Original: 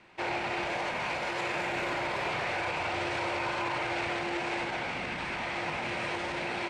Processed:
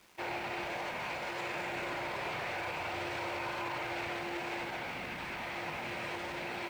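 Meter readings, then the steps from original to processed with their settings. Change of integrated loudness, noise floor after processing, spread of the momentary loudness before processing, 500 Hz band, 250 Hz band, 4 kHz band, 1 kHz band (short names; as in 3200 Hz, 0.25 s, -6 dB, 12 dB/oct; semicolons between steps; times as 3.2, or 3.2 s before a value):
-5.5 dB, -41 dBFS, 2 LU, -5.5 dB, -5.5 dB, -5.5 dB, -5.5 dB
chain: bit-crush 9-bit; gain -5.5 dB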